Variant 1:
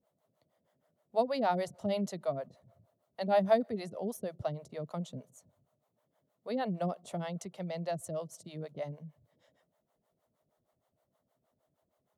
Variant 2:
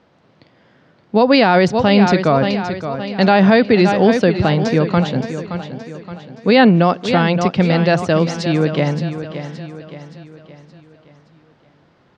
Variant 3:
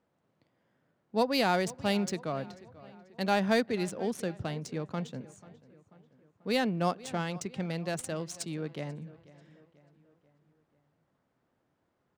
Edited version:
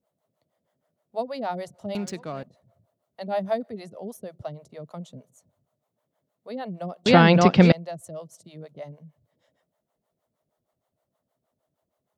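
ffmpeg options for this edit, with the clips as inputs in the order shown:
-filter_complex "[0:a]asplit=3[a][b][c];[a]atrim=end=1.952[d];[2:a]atrim=start=1.948:end=2.432[e];[b]atrim=start=2.428:end=7.062[f];[1:a]atrim=start=7.058:end=7.722[g];[c]atrim=start=7.718[h];[d][e]acrossfade=d=0.004:c1=hsin:c2=hsin[i];[i][f]acrossfade=d=0.004:c1=hsin:c2=hsin[j];[j][g]acrossfade=d=0.004:c1=hsin:c2=hsin[k];[k][h]acrossfade=d=0.004:c1=hsin:c2=hsin"

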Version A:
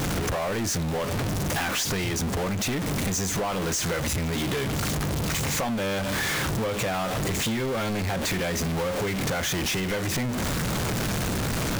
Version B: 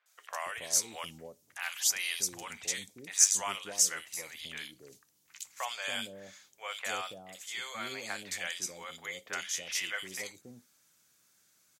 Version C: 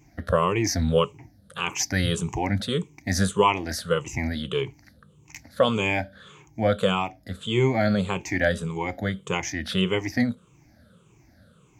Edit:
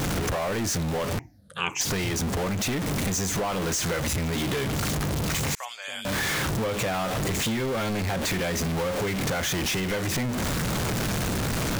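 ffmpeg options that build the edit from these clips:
-filter_complex "[0:a]asplit=3[a][b][c];[a]atrim=end=1.192[d];[2:a]atrim=start=1.188:end=1.812[e];[b]atrim=start=1.808:end=5.552[f];[1:a]atrim=start=5.548:end=6.052[g];[c]atrim=start=6.048[h];[d][e]acrossfade=d=0.004:c1=hsin:c2=hsin[i];[i][f]acrossfade=d=0.004:c1=hsin:c2=hsin[j];[j][g]acrossfade=d=0.004:c1=hsin:c2=hsin[k];[k][h]acrossfade=d=0.004:c1=hsin:c2=hsin"

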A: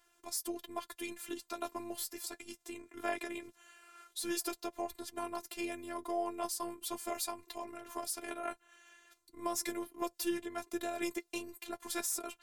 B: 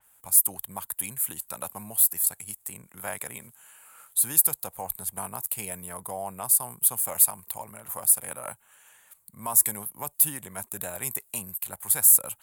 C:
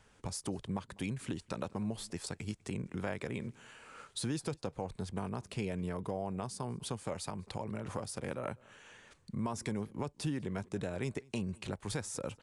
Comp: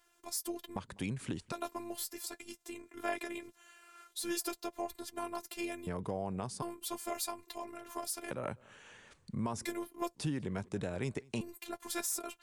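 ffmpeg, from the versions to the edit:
-filter_complex "[2:a]asplit=4[a][b][c][d];[0:a]asplit=5[e][f][g][h][i];[e]atrim=end=0.762[j];[a]atrim=start=0.758:end=1.522[k];[f]atrim=start=1.518:end=5.872[l];[b]atrim=start=5.868:end=6.622[m];[g]atrim=start=6.618:end=8.312[n];[c]atrim=start=8.308:end=9.652[o];[h]atrim=start=9.648:end=10.152[p];[d]atrim=start=10.148:end=11.412[q];[i]atrim=start=11.408[r];[j][k]acrossfade=d=0.004:c1=hsin:c2=hsin[s];[s][l]acrossfade=d=0.004:c1=hsin:c2=hsin[t];[t][m]acrossfade=d=0.004:c1=hsin:c2=hsin[u];[u][n]acrossfade=d=0.004:c1=hsin:c2=hsin[v];[v][o]acrossfade=d=0.004:c1=hsin:c2=hsin[w];[w][p]acrossfade=d=0.004:c1=hsin:c2=hsin[x];[x][q]acrossfade=d=0.004:c1=hsin:c2=hsin[y];[y][r]acrossfade=d=0.004:c1=hsin:c2=hsin"

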